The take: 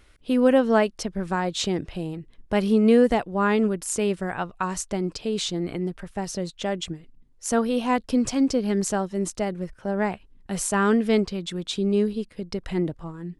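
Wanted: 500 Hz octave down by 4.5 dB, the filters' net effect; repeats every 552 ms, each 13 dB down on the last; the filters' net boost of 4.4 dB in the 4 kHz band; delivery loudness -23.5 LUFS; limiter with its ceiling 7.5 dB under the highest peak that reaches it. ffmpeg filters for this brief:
-af "equalizer=f=500:t=o:g=-5.5,equalizer=f=4000:t=o:g=5.5,alimiter=limit=0.168:level=0:latency=1,aecho=1:1:552|1104|1656:0.224|0.0493|0.0108,volume=1.5"

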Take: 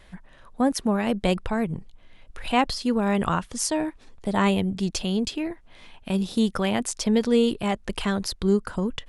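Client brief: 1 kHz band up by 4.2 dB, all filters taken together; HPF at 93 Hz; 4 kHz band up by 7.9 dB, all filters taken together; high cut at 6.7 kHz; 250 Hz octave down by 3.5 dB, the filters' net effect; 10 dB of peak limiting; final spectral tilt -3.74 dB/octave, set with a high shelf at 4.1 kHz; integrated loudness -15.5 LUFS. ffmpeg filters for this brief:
-af "highpass=93,lowpass=6700,equalizer=f=250:t=o:g=-4.5,equalizer=f=1000:t=o:g=5,equalizer=f=4000:t=o:g=8.5,highshelf=f=4100:g=4,volume=3.55,alimiter=limit=0.631:level=0:latency=1"

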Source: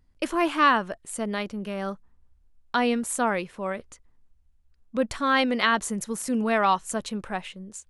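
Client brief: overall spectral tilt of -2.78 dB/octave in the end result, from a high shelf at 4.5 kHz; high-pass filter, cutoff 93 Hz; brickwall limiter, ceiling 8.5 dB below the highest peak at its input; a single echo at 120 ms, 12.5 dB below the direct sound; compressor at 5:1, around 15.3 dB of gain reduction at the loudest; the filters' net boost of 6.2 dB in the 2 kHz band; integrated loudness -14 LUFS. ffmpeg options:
-af "highpass=93,equalizer=f=2000:t=o:g=6.5,highshelf=f=4500:g=8,acompressor=threshold=0.0355:ratio=5,alimiter=limit=0.0841:level=0:latency=1,aecho=1:1:120:0.237,volume=8.91"

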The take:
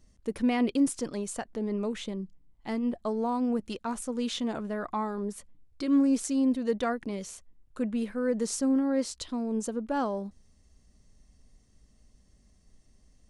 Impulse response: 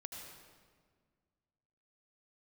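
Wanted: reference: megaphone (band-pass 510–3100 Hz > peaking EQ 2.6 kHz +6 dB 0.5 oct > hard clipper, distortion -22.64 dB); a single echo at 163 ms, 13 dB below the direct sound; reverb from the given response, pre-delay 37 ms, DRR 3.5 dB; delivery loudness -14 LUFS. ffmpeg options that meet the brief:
-filter_complex "[0:a]aecho=1:1:163:0.224,asplit=2[s0][s1];[1:a]atrim=start_sample=2205,adelay=37[s2];[s1][s2]afir=irnorm=-1:irlink=0,volume=0.944[s3];[s0][s3]amix=inputs=2:normalize=0,highpass=510,lowpass=3100,equalizer=f=2600:t=o:w=0.5:g=6,asoftclip=type=hard:threshold=0.075,volume=11.9"

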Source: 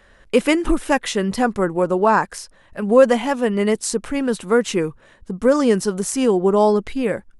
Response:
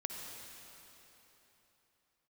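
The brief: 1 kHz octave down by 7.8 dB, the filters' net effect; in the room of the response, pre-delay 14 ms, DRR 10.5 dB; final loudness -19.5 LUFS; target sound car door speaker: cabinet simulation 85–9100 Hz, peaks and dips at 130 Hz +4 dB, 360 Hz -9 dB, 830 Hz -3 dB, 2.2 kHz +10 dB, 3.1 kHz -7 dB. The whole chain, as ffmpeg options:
-filter_complex "[0:a]equalizer=f=1000:t=o:g=-8,asplit=2[s0][s1];[1:a]atrim=start_sample=2205,adelay=14[s2];[s1][s2]afir=irnorm=-1:irlink=0,volume=0.282[s3];[s0][s3]amix=inputs=2:normalize=0,highpass=85,equalizer=f=130:t=q:w=4:g=4,equalizer=f=360:t=q:w=4:g=-9,equalizer=f=830:t=q:w=4:g=-3,equalizer=f=2200:t=q:w=4:g=10,equalizer=f=3100:t=q:w=4:g=-7,lowpass=f=9100:w=0.5412,lowpass=f=9100:w=1.3066,volume=1.26"

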